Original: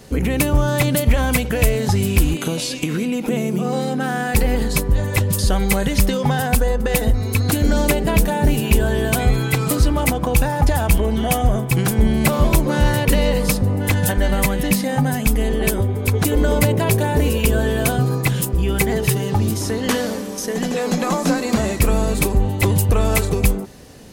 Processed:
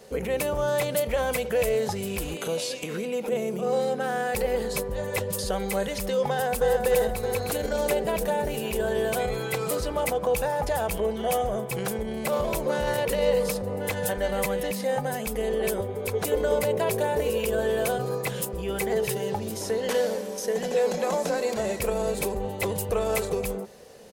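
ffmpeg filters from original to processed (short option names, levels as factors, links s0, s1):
-filter_complex "[0:a]asplit=2[s0][s1];[s1]afade=t=in:st=6.3:d=0.01,afade=t=out:st=6.83:d=0.01,aecho=0:1:310|620|930|1240|1550|1860|2170|2480|2790|3100:0.630957|0.410122|0.266579|0.173277|0.11263|0.0732094|0.0475861|0.030931|0.0201051|0.0130683[s2];[s0][s2]amix=inputs=2:normalize=0,asettb=1/sr,asplit=3[s3][s4][s5];[s3]atrim=end=19.054[s6];[s4]atrim=start=19.05:end=22.36,asetpts=PTS-STARTPTS,afade=t=in:d=0.004:c=qsin,afade=t=out:st=3.306:d=0.004:c=qsin,bandreject=f=1200:w=9.5[s7];[s5]atrim=start=22.356[s8];[s6][s7]acrossfade=d=0.004:c1=hsin:c2=qsin[s9];[s9][s8]acrossfade=d=0.004:c1=qsin:c2=hsin,equalizer=f=210:t=o:w=0.7:g=14.5,alimiter=limit=0.501:level=0:latency=1:release=13,lowshelf=f=350:t=q:w=3:g=-10.5,volume=0.422"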